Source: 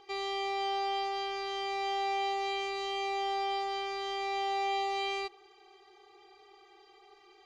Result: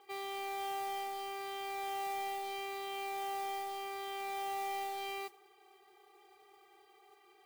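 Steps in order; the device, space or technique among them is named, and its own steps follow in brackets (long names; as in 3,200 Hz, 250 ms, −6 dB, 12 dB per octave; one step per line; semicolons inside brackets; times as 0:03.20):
carbon microphone (band-pass filter 330–3,100 Hz; soft clipping −30.5 dBFS, distortion −17 dB; noise that follows the level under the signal 14 dB)
level −3.5 dB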